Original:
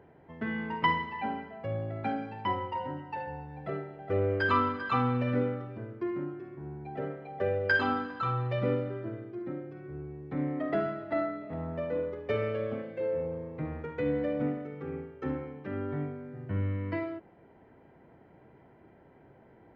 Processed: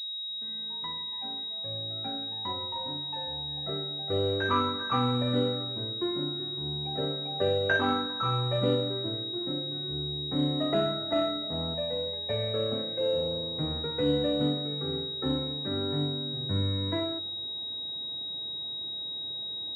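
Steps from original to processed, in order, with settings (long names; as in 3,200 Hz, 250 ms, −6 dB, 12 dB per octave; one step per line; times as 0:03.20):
fade in at the beginning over 5.95 s
0:11.74–0:12.54: phaser with its sweep stopped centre 1,300 Hz, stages 6
convolution reverb RT60 1.0 s, pre-delay 4 ms, DRR 17.5 dB
switching amplifier with a slow clock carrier 3,800 Hz
level +2.5 dB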